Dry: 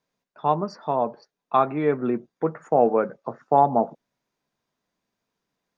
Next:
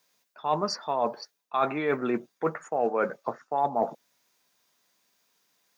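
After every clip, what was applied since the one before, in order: tilt +3.5 dB/oct; reverse; compressor 6:1, threshold -29 dBFS, peak gain reduction 15 dB; reverse; gain +6 dB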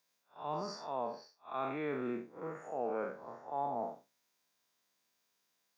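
time blur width 0.141 s; gain -7.5 dB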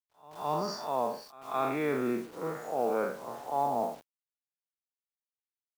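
requantised 10-bit, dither none; modulation noise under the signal 29 dB; pre-echo 0.214 s -21 dB; gain +7 dB

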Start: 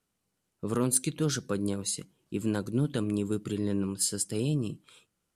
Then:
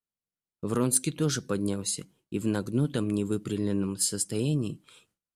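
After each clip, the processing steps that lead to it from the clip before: gate with hold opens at -58 dBFS; gain +1.5 dB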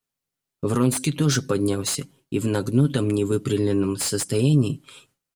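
limiter -19.5 dBFS, peak gain reduction 8.5 dB; comb 7.4 ms, depth 56%; slew limiter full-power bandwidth 210 Hz; gain +8 dB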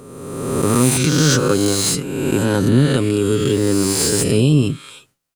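spectral swells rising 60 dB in 1.57 s; gain +3.5 dB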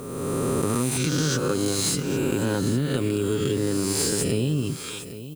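compressor 5:1, threshold -25 dBFS, peak gain reduction 15 dB; added noise violet -55 dBFS; echo 0.808 s -13.5 dB; gain +3 dB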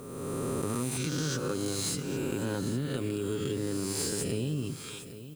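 reverb RT60 2.6 s, pre-delay 83 ms, DRR 18 dB; gain -8 dB

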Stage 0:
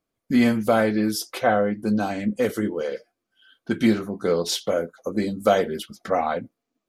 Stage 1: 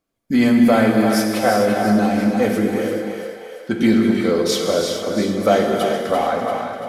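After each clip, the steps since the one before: split-band echo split 480 Hz, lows 0.103 s, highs 0.341 s, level -8 dB; non-linear reverb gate 0.47 s flat, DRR 1.5 dB; soft clip -3.5 dBFS, distortion -30 dB; gain +2.5 dB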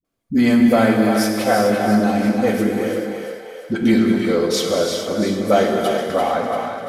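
dispersion highs, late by 47 ms, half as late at 340 Hz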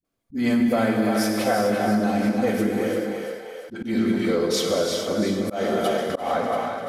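compressor 3:1, threshold -16 dBFS, peak gain reduction 6 dB; auto swell 0.155 s; gain -2 dB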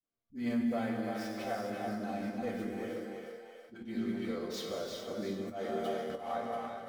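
median filter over 5 samples; notches 50/100 Hz; resonator bank D#2 major, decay 0.21 s; gain -5 dB

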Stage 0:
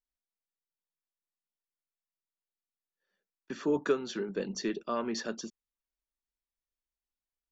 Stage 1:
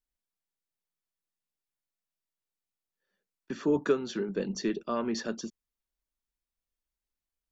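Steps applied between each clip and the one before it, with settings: low shelf 280 Hz +6.5 dB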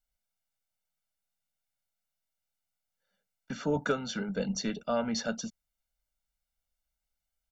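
comb 1.4 ms, depth 98%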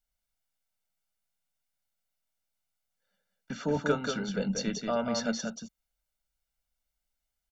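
echo 0.184 s -5 dB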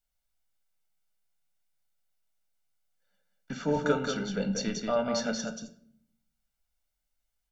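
shoebox room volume 110 m³, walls mixed, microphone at 0.31 m

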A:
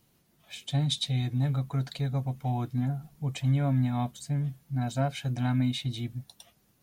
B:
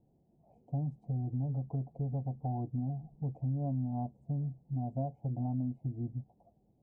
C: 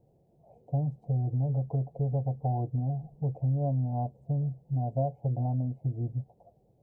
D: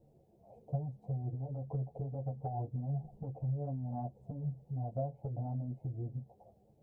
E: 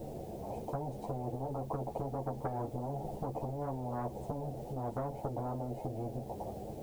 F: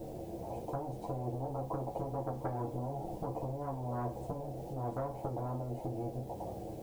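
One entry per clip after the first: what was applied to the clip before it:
elliptic low-pass 790 Hz, stop band 50 dB; compressor 3:1, threshold -33 dBFS, peak gain reduction 8.5 dB
graphic EQ 125/250/500 Hz +5/-7/+10 dB; gain +2.5 dB
compressor 4:1, threshold -34 dBFS, peak gain reduction 9 dB; ensemble effect; gain +3 dB
spectral compressor 4:1; gain +1.5 dB
reverb RT60 0.40 s, pre-delay 3 ms, DRR 5.5 dB; gain -1.5 dB

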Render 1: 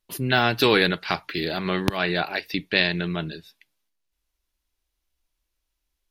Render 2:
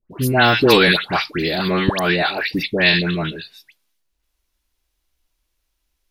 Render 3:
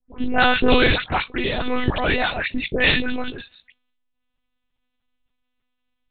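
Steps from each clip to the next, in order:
dispersion highs, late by 0.112 s, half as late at 1400 Hz; gain +6.5 dB
monotone LPC vocoder at 8 kHz 250 Hz; gain -2 dB

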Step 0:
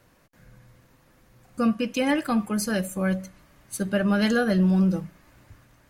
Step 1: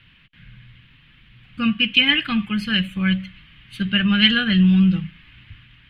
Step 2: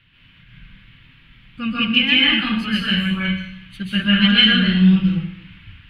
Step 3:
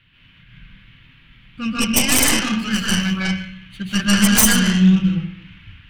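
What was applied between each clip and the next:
EQ curve 170 Hz 0 dB, 590 Hz -23 dB, 3100 Hz +14 dB, 6200 Hz -26 dB; gain +7.5 dB
plate-style reverb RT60 0.75 s, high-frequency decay 0.9×, pre-delay 0.12 s, DRR -6.5 dB; gain -4.5 dB
tracing distortion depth 0.39 ms

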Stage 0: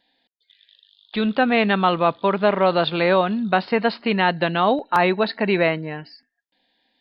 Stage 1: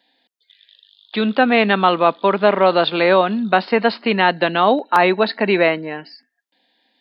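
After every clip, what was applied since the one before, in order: HPF 200 Hz 24 dB/oct; gain +4 dB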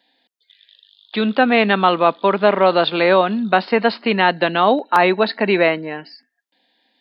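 nothing audible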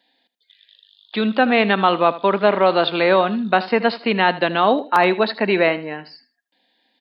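feedback echo 78 ms, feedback 21%, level -16 dB; gain -1.5 dB

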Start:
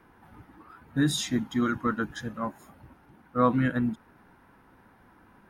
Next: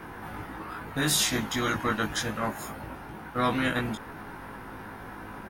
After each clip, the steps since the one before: doubler 19 ms -2 dB; spectral compressor 2:1; gain -1.5 dB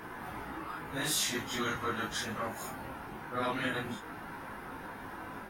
phase scrambler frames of 0.1 s; low shelf 200 Hz -5.5 dB; in parallel at +2.5 dB: compressor, threshold -36 dBFS, peak gain reduction 13.5 dB; on the sum: gain -8.5 dB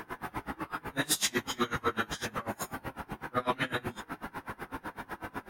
in parallel at -9 dB: soft clip -30.5 dBFS, distortion -13 dB; on the sum: dB-linear tremolo 8 Hz, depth 26 dB; gain +5.5 dB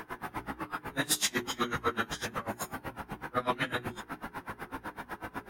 notches 60/120/180/240/300/360/420 Hz

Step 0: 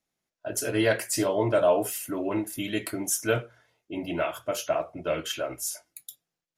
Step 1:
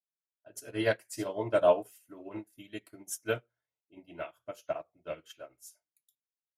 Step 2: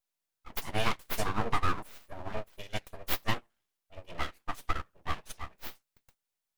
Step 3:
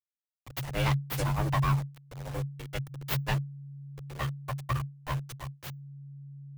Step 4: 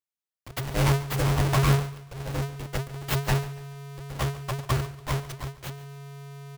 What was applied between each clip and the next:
upward expander 2.5:1, over -37 dBFS
dynamic EQ 7900 Hz, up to +5 dB, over -59 dBFS, Q 1.1; compressor 6:1, threshold -31 dBFS, peak gain reduction 13 dB; full-wave rectifier; gain +8.5 dB
level-crossing sampler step -39 dBFS; frequency shift -140 Hz
half-waves squared off; feedback echo 0.142 s, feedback 36%, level -17.5 dB

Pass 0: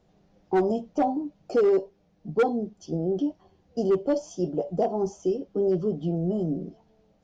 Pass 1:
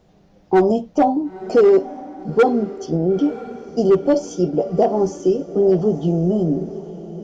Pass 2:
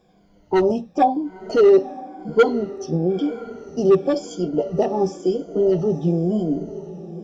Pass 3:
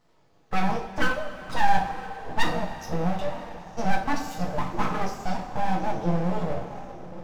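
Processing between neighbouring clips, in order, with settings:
diffused feedback echo 0.945 s, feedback 42%, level -15 dB; gain +8.5 dB
moving spectral ripple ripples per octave 1.8, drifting -0.97 Hz, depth 14 dB; dynamic EQ 3500 Hz, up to +6 dB, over -39 dBFS, Q 1.2; gain -4.5 dB
HPF 110 Hz 6 dB/oct; full-wave rectifier; two-slope reverb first 0.42 s, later 3.1 s, from -15 dB, DRR 0 dB; gain -5 dB

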